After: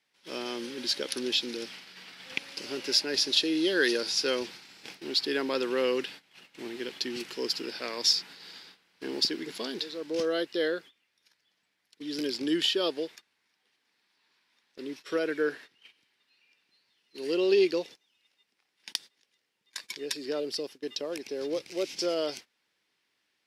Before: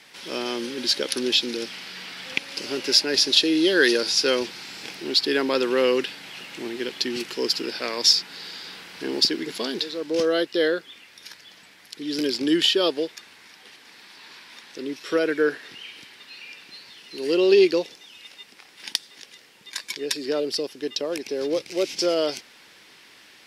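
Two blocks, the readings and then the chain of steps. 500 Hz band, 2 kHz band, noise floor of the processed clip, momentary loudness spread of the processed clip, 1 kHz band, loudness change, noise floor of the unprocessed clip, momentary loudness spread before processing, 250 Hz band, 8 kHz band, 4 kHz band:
-7.0 dB, -7.0 dB, -77 dBFS, 18 LU, -7.0 dB, -7.0 dB, -51 dBFS, 21 LU, -7.0 dB, -7.0 dB, -7.0 dB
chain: gate -37 dBFS, range -19 dB; trim -7 dB

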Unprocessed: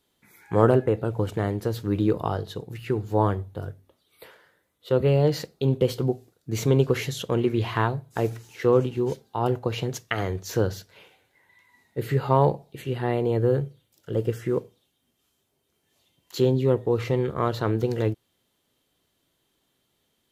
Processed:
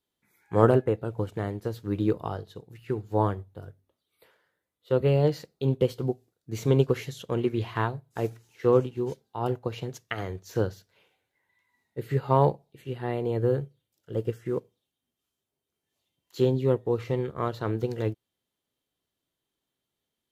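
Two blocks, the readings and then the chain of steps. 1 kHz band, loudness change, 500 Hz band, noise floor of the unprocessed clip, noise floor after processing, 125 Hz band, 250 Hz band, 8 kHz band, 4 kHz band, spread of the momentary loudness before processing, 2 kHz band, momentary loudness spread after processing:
-3.0 dB, -3.0 dB, -2.5 dB, -73 dBFS, under -85 dBFS, -3.0 dB, -3.0 dB, -9.0 dB, -6.5 dB, 11 LU, -5.0 dB, 15 LU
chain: upward expansion 1.5:1, over -40 dBFS

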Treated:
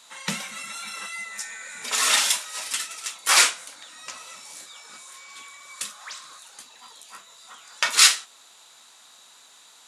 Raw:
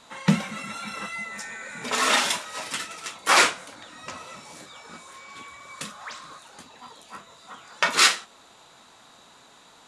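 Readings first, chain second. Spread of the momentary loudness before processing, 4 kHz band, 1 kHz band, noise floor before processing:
25 LU, +3.0 dB, -4.5 dB, -53 dBFS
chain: tilt EQ +4 dB/octave; trim -5 dB

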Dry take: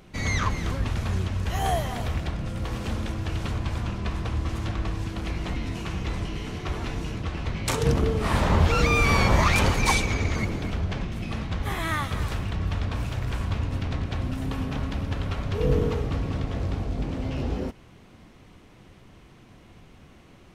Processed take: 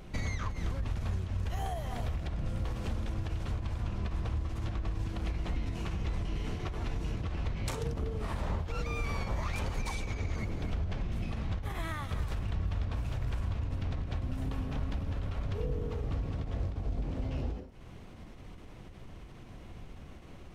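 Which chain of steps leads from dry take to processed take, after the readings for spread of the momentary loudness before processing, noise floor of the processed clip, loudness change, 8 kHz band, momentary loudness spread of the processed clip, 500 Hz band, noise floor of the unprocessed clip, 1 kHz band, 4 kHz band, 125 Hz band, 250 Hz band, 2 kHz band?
11 LU, -49 dBFS, -9.0 dB, -14.5 dB, 15 LU, -12.0 dB, -51 dBFS, -13.0 dB, -13.5 dB, -7.5 dB, -10.5 dB, -14.5 dB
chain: peaking EQ 610 Hz +3 dB 1.4 oct; compression, threshold -34 dBFS, peak gain reduction 18 dB; bass shelf 85 Hz +11.5 dB; endings held to a fixed fall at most 100 dB/s; trim -1.5 dB

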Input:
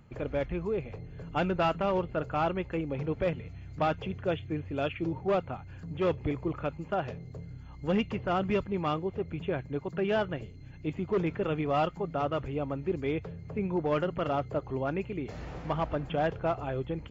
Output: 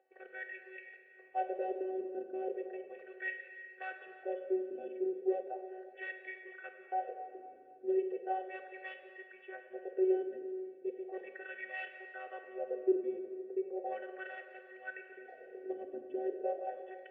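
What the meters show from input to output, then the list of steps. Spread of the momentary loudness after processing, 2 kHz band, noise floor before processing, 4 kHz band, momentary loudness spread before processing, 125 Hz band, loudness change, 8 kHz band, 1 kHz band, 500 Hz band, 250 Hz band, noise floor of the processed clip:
15 LU, -4.0 dB, -46 dBFS, under -15 dB, 10 LU, under -40 dB, -7.5 dB, no reading, -8.5 dB, -6.0 dB, -9.5 dB, -58 dBFS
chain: robot voice 377 Hz; vowel filter e; wah-wah 0.36 Hz 290–2000 Hz, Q 3.8; Schroeder reverb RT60 2.3 s, combs from 31 ms, DRR 5.5 dB; trim +17.5 dB

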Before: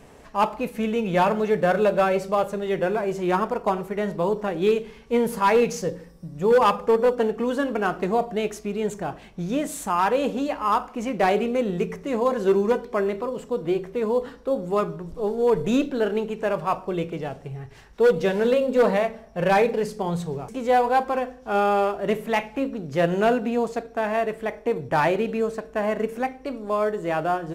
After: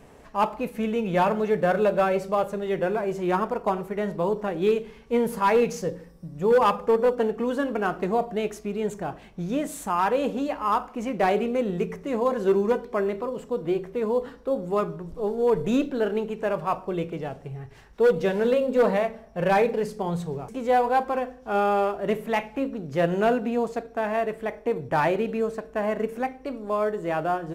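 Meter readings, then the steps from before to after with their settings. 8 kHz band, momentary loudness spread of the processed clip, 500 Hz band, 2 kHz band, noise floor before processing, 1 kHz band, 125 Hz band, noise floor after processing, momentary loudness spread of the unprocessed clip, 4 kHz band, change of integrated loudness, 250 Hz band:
-4.0 dB, 9 LU, -1.5 dB, -2.5 dB, -47 dBFS, -2.0 dB, -1.5 dB, -49 dBFS, 9 LU, -4.0 dB, -1.5 dB, -1.5 dB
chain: peaking EQ 5.6 kHz -3 dB 2.4 oct; trim -1.5 dB

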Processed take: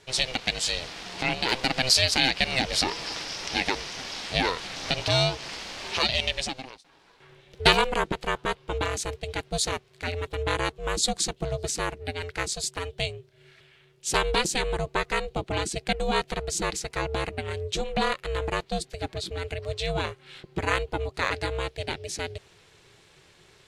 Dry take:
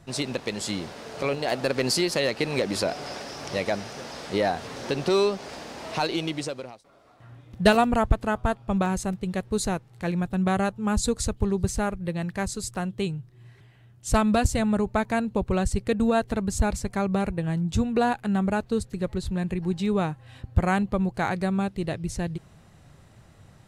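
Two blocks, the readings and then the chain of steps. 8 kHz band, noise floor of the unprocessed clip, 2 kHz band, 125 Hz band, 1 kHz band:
+3.5 dB, -54 dBFS, +3.5 dB, -5.0 dB, -1.0 dB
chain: frequency weighting D; ring modulator 260 Hz

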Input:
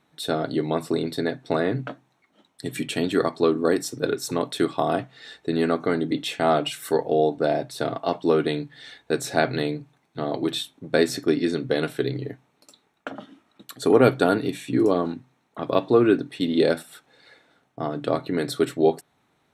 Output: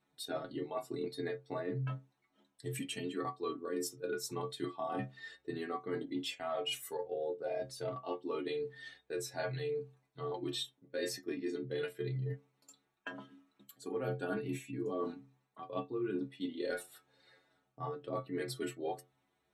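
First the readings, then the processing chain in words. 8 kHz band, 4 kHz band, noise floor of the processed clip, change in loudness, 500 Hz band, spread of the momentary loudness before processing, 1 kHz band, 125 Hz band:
-10.0 dB, -11.5 dB, -80 dBFS, -15.5 dB, -16.0 dB, 13 LU, -15.5 dB, -11.0 dB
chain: inharmonic resonator 65 Hz, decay 0.38 s, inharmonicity 0.008; spectral noise reduction 9 dB; reverse; compression 6:1, threshold -41 dBFS, peak gain reduction 19.5 dB; reverse; endings held to a fixed fall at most 370 dB/s; trim +5.5 dB

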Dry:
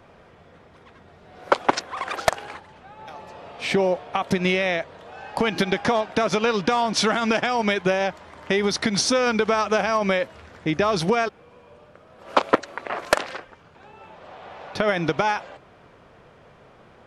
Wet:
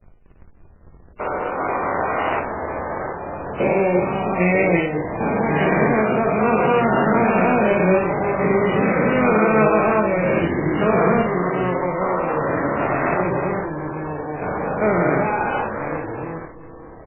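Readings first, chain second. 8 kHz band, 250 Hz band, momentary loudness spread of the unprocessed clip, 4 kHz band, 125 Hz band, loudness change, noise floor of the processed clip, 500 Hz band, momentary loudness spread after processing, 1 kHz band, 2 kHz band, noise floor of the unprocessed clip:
under -40 dB, +7.0 dB, 17 LU, under -10 dB, +9.0 dB, +3.5 dB, -46 dBFS, +5.5 dB, 11 LU, +4.5 dB, +3.0 dB, -52 dBFS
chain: spectrogram pixelated in time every 400 ms; band-stop 1.7 kHz, Q 19; de-hum 166.2 Hz, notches 14; in parallel at +3 dB: compression 16:1, threshold -35 dBFS, peak gain reduction 14.5 dB; on the sum: hysteresis with a dead band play -31.5 dBFS; on a send: early reflections 23 ms -11 dB, 56 ms -5.5 dB; on the sum: ever faster or slower copies 261 ms, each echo -3 st, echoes 2, each echo -6 dB; trim +5.5 dB; MP3 8 kbps 8 kHz

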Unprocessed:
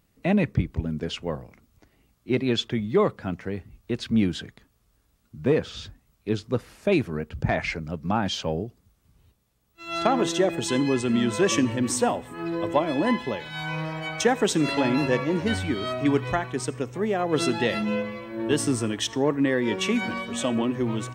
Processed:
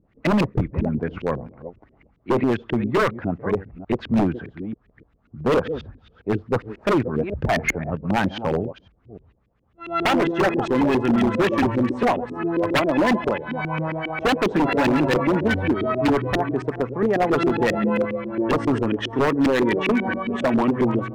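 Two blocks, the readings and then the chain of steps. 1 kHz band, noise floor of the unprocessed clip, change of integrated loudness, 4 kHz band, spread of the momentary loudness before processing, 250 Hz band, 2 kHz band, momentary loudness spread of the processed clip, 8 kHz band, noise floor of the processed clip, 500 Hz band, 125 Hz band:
+5.5 dB, -67 dBFS, +3.5 dB, -2.0 dB, 10 LU, +4.0 dB, +4.5 dB, 9 LU, -9.5 dB, -62 dBFS, +4.0 dB, +3.0 dB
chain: chunks repeated in reverse 296 ms, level -14 dB; LFO low-pass saw up 7.4 Hz 280–2600 Hz; wavefolder -16 dBFS; trim +3.5 dB

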